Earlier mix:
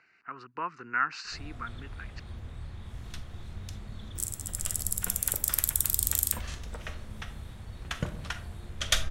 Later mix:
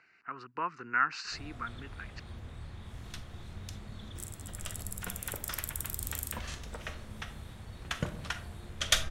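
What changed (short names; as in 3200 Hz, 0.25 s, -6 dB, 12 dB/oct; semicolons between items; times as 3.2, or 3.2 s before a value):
first sound: add low shelf 80 Hz -7 dB; second sound -11.5 dB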